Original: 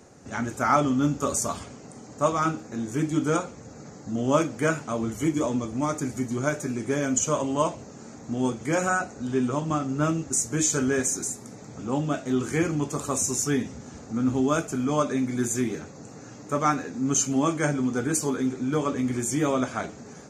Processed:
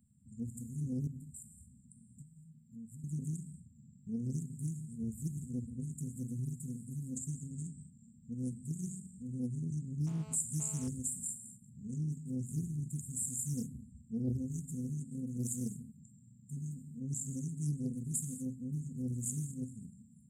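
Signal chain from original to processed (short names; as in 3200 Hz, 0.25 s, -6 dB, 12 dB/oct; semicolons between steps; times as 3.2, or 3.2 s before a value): spectral noise reduction 7 dB; 1.07–3.04 compressor 12:1, threshold -37 dBFS, peak gain reduction 20.5 dB; brick-wall FIR band-stop 250–7200 Hz; non-linear reverb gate 0.25 s flat, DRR 8 dB; 10.07–10.88 GSM buzz -51 dBFS; Doppler distortion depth 0.47 ms; gain -5.5 dB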